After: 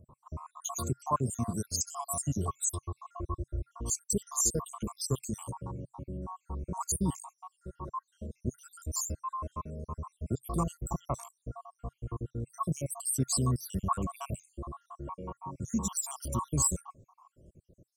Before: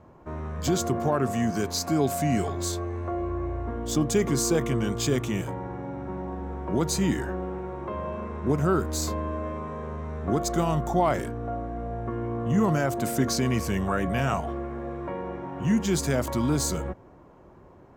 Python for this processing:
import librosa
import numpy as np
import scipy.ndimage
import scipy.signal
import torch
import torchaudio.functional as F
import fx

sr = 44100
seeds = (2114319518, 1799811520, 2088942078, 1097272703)

y = fx.spec_dropout(x, sr, seeds[0], share_pct=73)
y = fx.curve_eq(y, sr, hz=(130.0, 300.0, 750.0, 1100.0, 1700.0, 2800.0, 4100.0, 8700.0, 14000.0), db=(0, -9, -9, 6, -28, -7, -8, 12, 0))